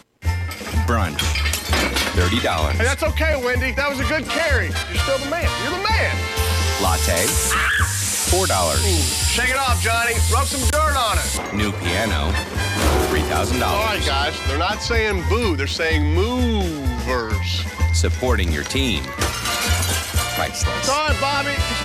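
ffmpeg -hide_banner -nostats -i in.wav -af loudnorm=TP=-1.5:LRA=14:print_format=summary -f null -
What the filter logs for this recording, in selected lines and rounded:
Input Integrated:    -19.5 LUFS
Input True Peak:      -4.8 dBTP
Input LRA:             2.8 LU
Input Threshold:     -29.5 LUFS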